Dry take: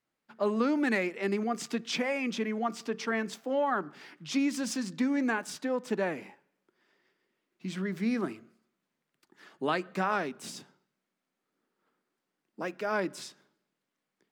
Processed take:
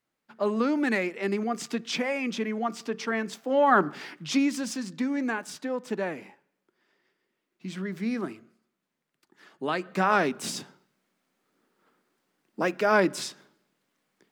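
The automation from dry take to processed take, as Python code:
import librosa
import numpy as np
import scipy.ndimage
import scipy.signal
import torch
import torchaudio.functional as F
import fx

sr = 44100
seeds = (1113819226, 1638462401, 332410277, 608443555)

y = fx.gain(x, sr, db=fx.line((3.42, 2.0), (3.82, 12.0), (4.72, 0.0), (9.68, 0.0), (10.26, 9.0)))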